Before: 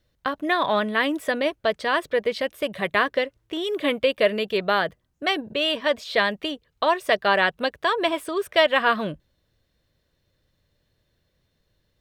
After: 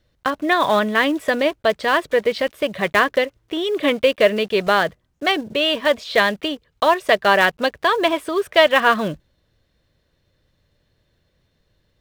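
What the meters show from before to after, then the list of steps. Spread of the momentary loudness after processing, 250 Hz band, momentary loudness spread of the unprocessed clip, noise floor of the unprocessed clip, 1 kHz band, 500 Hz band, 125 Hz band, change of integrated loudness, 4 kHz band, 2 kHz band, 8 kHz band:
8 LU, +5.0 dB, 8 LU, -72 dBFS, +5.0 dB, +5.0 dB, +5.0 dB, +5.0 dB, +4.0 dB, +4.5 dB, +6.5 dB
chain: block-companded coder 5-bit; treble shelf 7.9 kHz -8.5 dB; trim +5 dB

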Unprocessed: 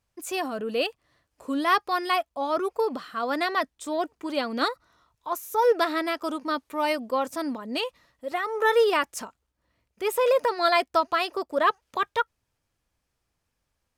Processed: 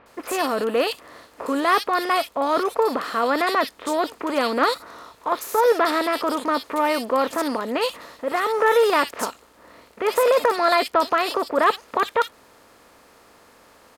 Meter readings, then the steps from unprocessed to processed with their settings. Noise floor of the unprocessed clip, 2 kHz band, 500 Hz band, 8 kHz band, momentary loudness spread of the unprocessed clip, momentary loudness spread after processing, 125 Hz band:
-80 dBFS, +4.0 dB, +4.5 dB, +6.0 dB, 10 LU, 9 LU, no reading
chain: spectral levelling over time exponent 0.6; bands offset in time lows, highs 60 ms, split 2.8 kHz; trim +1.5 dB

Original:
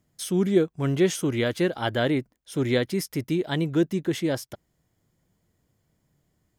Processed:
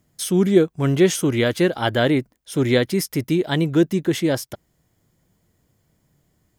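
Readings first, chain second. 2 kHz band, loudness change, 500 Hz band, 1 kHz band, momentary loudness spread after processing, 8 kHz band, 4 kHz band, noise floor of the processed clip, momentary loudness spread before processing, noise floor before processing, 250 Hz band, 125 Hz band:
+5.5 dB, +5.5 dB, +5.5 dB, +5.5 dB, 6 LU, +6.5 dB, +6.0 dB, -68 dBFS, 6 LU, -74 dBFS, +5.5 dB, +5.5 dB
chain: treble shelf 10 kHz +3.5 dB; trim +5.5 dB

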